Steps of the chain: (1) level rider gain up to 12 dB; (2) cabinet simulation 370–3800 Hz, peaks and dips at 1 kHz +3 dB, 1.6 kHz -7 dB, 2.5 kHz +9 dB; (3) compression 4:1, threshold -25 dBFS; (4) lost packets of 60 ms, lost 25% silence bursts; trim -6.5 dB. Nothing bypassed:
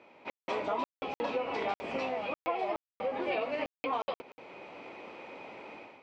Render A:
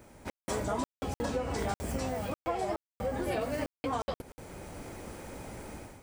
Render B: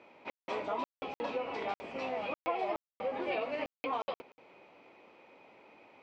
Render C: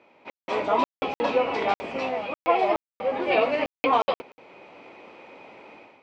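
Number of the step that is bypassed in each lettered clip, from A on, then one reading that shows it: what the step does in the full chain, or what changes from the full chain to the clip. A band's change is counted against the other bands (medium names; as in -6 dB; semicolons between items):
2, 125 Hz band +17.5 dB; 1, momentary loudness spread change -7 LU; 3, mean gain reduction 5.5 dB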